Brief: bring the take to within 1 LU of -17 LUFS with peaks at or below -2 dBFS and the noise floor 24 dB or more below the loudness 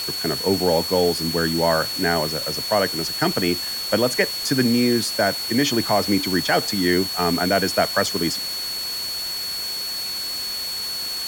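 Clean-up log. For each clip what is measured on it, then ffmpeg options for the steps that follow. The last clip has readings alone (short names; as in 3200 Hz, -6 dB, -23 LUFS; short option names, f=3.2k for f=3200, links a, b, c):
steady tone 4400 Hz; tone level -26 dBFS; noise floor -28 dBFS; noise floor target -45 dBFS; loudness -21.0 LUFS; peak -5.0 dBFS; loudness target -17.0 LUFS
-> -af "bandreject=f=4.4k:w=30"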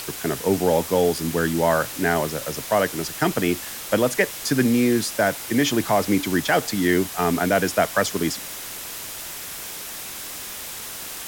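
steady tone none; noise floor -34 dBFS; noise floor target -47 dBFS
-> -af "afftdn=nr=13:nf=-34"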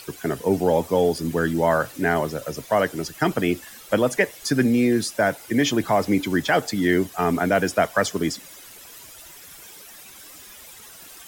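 noise floor -44 dBFS; noise floor target -47 dBFS
-> -af "afftdn=nr=6:nf=-44"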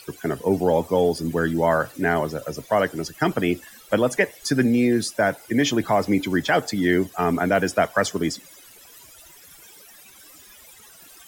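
noise floor -48 dBFS; loudness -22.5 LUFS; peak -6.0 dBFS; loudness target -17.0 LUFS
-> -af "volume=5.5dB,alimiter=limit=-2dB:level=0:latency=1"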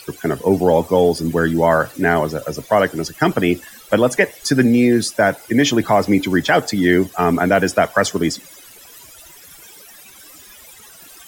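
loudness -17.0 LUFS; peak -2.0 dBFS; noise floor -43 dBFS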